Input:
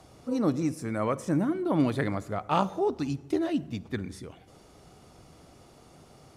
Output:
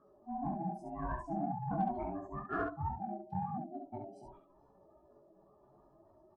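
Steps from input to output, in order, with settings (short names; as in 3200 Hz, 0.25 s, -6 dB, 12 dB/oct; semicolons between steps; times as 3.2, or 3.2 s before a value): spectral contrast raised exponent 2.7; ring modulator 490 Hz; chorus voices 4, 1.1 Hz, delay 18 ms, depth 4 ms; added harmonics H 2 -24 dB, 7 -40 dB, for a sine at -17 dBFS; on a send: early reflections 21 ms -6.5 dB, 68 ms -4.5 dB; on the sum: gain -5.5 dB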